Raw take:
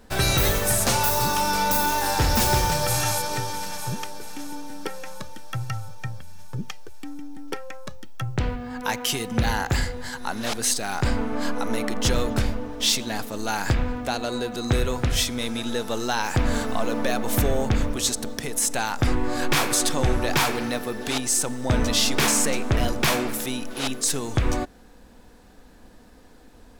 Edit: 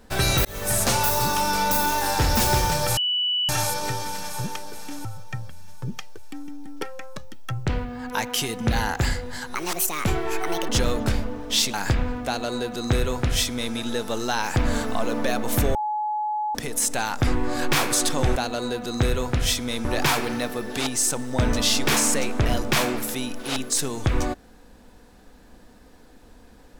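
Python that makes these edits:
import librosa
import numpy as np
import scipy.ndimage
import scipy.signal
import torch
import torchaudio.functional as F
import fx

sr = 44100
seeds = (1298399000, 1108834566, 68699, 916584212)

y = fx.edit(x, sr, fx.fade_in_span(start_s=0.45, length_s=0.32),
    fx.insert_tone(at_s=2.97, length_s=0.52, hz=2960.0, db=-20.5),
    fx.cut(start_s=4.53, length_s=1.23),
    fx.speed_span(start_s=10.26, length_s=1.73, speed=1.52),
    fx.cut(start_s=13.04, length_s=0.5),
    fx.duplicate(start_s=14.06, length_s=1.49, to_s=20.16),
    fx.bleep(start_s=17.55, length_s=0.8, hz=848.0, db=-23.0), tone=tone)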